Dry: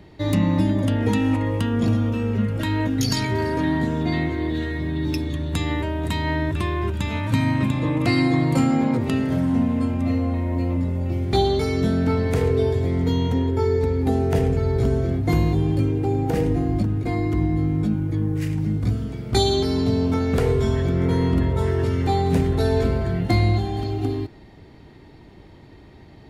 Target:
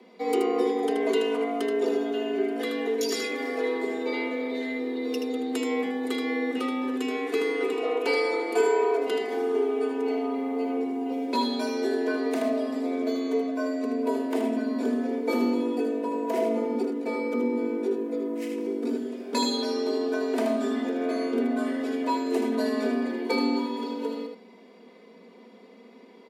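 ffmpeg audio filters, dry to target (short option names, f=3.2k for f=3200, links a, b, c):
-filter_complex "[0:a]aecho=1:1:3.8:0.83,aecho=1:1:78:0.501,afreqshift=180,asettb=1/sr,asplit=3[a][b][c];[a]atrim=end=14.214[d];[b]atrim=start=14.21:end=14.83,asetpts=PTS-STARTPTS,afade=t=in:d=0.004:c=qsin,afade=t=out:st=0.616:d=0.004:c=qsin,bandreject=f=6.2k:w=9.2[e];[c]atrim=start=14.826[f];[d][e]acrossfade=d=0.004:c1=hsin:c2=qsin[g];[g][f]acrossfade=d=0.004:c1=qsin:c2=hsin,volume=-7.5dB"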